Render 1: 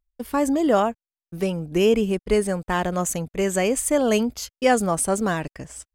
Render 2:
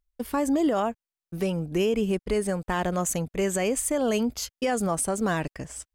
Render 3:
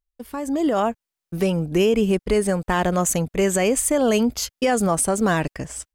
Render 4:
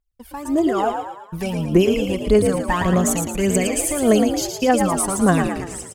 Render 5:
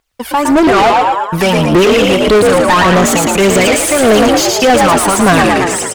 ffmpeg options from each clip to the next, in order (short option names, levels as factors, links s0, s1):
-af "alimiter=limit=0.15:level=0:latency=1:release=158"
-af "dynaudnorm=f=420:g=3:m=3.98,volume=0.531"
-filter_complex "[0:a]aphaser=in_gain=1:out_gain=1:delay=1.4:decay=0.68:speed=1.7:type=triangular,asplit=2[s0][s1];[s1]asplit=6[s2][s3][s4][s5][s6][s7];[s2]adelay=113,afreqshift=55,volume=0.501[s8];[s3]adelay=226,afreqshift=110,volume=0.234[s9];[s4]adelay=339,afreqshift=165,volume=0.111[s10];[s5]adelay=452,afreqshift=220,volume=0.0519[s11];[s6]adelay=565,afreqshift=275,volume=0.0245[s12];[s7]adelay=678,afreqshift=330,volume=0.0115[s13];[s8][s9][s10][s11][s12][s13]amix=inputs=6:normalize=0[s14];[s0][s14]amix=inputs=2:normalize=0,volume=0.708"
-filter_complex "[0:a]asplit=2[s0][s1];[s1]highpass=f=720:p=1,volume=35.5,asoftclip=type=tanh:threshold=0.708[s2];[s0][s2]amix=inputs=2:normalize=0,lowpass=f=3500:p=1,volume=0.501,volume=1.26"